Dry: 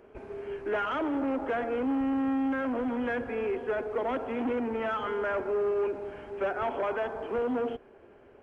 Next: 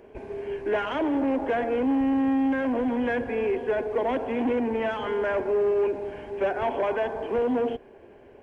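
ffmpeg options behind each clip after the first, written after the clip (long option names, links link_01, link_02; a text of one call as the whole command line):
ffmpeg -i in.wav -af "equalizer=frequency=1300:width=7.4:gain=-15,volume=5dB" out.wav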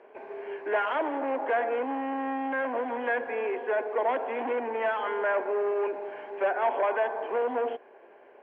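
ffmpeg -i in.wav -af "highpass=650,lowpass=2000,volume=3.5dB" out.wav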